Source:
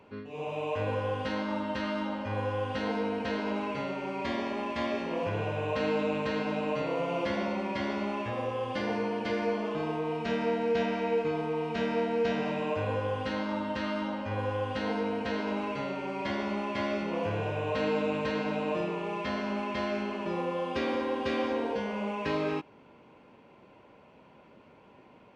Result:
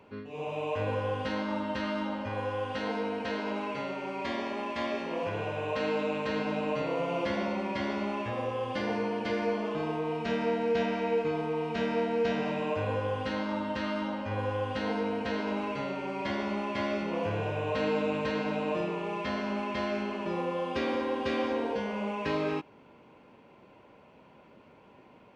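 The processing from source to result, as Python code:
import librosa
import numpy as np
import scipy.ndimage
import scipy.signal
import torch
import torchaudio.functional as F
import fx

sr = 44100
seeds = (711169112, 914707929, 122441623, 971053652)

y = fx.low_shelf(x, sr, hz=200.0, db=-6.5, at=(2.29, 6.29))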